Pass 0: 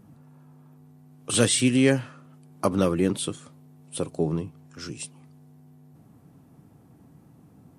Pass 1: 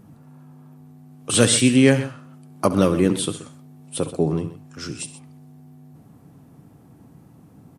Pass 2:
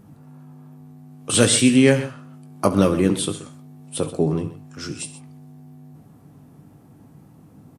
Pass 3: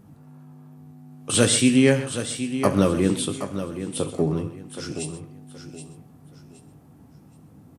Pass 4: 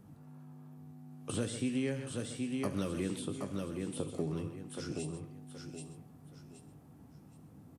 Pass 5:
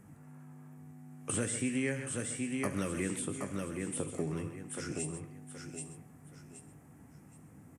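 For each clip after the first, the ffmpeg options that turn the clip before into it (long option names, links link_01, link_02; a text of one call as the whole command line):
ffmpeg -i in.wav -af "aecho=1:1:68|128:0.178|0.2,volume=4.5dB" out.wav
ffmpeg -i in.wav -filter_complex "[0:a]asplit=2[link_01][link_02];[link_02]adelay=20,volume=-10.5dB[link_03];[link_01][link_03]amix=inputs=2:normalize=0" out.wav
ffmpeg -i in.wav -af "equalizer=frequency=74:width_type=o:width=0.28:gain=7.5,aecho=1:1:772|1544|2316:0.299|0.0836|0.0234,volume=-2.5dB" out.wav
ffmpeg -i in.wav -filter_complex "[0:a]acrossover=split=460|1600[link_01][link_02][link_03];[link_01]acompressor=threshold=-28dB:ratio=4[link_04];[link_02]acompressor=threshold=-41dB:ratio=4[link_05];[link_03]acompressor=threshold=-41dB:ratio=4[link_06];[link_04][link_05][link_06]amix=inputs=3:normalize=0,volume=-6dB" out.wav
ffmpeg -i in.wav -af "equalizer=frequency=2000:width_type=o:width=1:gain=11,equalizer=frequency=4000:width_type=o:width=1:gain=-10,equalizer=frequency=8000:width_type=o:width=1:gain=11" out.wav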